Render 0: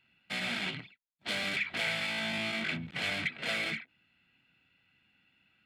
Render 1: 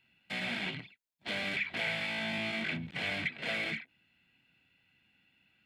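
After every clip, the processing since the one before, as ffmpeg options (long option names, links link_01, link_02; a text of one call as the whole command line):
ffmpeg -i in.wav -filter_complex "[0:a]acrossover=split=3400[link_01][link_02];[link_02]acompressor=threshold=-48dB:ratio=4:attack=1:release=60[link_03];[link_01][link_03]amix=inputs=2:normalize=0,equalizer=frequency=1300:width=4.7:gain=-6" out.wav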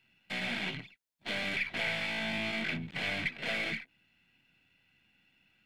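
ffmpeg -i in.wav -af "aeval=exprs='if(lt(val(0),0),0.708*val(0),val(0))':channel_layout=same,volume=2dB" out.wav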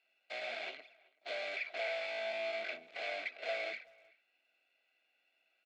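ffmpeg -i in.wav -filter_complex "[0:a]highpass=frequency=440:width=0.5412,highpass=frequency=440:width=1.3066,equalizer=frequency=650:width_type=q:width=4:gain=10,equalizer=frequency=950:width_type=q:width=4:gain=-10,equalizer=frequency=1800:width_type=q:width=4:gain=-7,equalizer=frequency=3100:width_type=q:width=4:gain=-7,equalizer=frequency=5600:width_type=q:width=4:gain=-4,lowpass=frequency=6300:width=0.5412,lowpass=frequency=6300:width=1.3066,asplit=2[link_01][link_02];[link_02]adelay=380,highpass=300,lowpass=3400,asoftclip=type=hard:threshold=-30.5dB,volume=-24dB[link_03];[link_01][link_03]amix=inputs=2:normalize=0,volume=-3.5dB" out.wav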